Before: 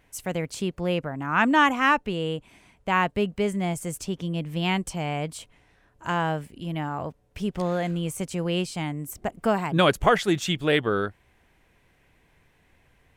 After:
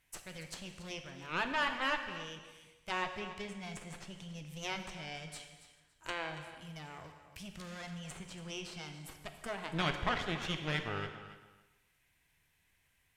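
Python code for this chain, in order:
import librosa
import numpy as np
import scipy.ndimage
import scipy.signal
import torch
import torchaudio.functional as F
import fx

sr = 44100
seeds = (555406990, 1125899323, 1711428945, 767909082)

p1 = fx.tone_stack(x, sr, knobs='5-5-5')
p2 = fx.cheby_harmonics(p1, sr, harmonics=(8,), levels_db=(-13,), full_scale_db=-18.0)
p3 = fx.high_shelf(p2, sr, hz=10000.0, db=10.5)
p4 = fx.env_lowpass_down(p3, sr, base_hz=2800.0, full_db=-35.0)
p5 = p4 + fx.echo_feedback(p4, sr, ms=281, feedback_pct=23, wet_db=-14.5, dry=0)
p6 = fx.rev_gated(p5, sr, seeds[0], gate_ms=470, shape='falling', drr_db=6.0)
y = p6 * librosa.db_to_amplitude(-1.0)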